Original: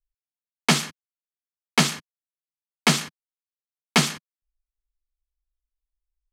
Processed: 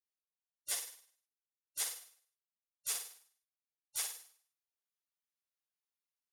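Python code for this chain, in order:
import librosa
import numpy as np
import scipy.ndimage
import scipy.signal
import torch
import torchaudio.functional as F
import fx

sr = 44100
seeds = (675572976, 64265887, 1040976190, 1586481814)

y = fx.spec_gate(x, sr, threshold_db=-25, keep='weak')
y = fx.low_shelf(y, sr, hz=360.0, db=-12.0)
y = fx.notch(y, sr, hz=7800.0, q=9.2)
y = fx.room_flutter(y, sr, wall_m=8.7, rt60_s=0.53)
y = fx.ensemble(y, sr)
y = y * 10.0 ** (1.0 / 20.0)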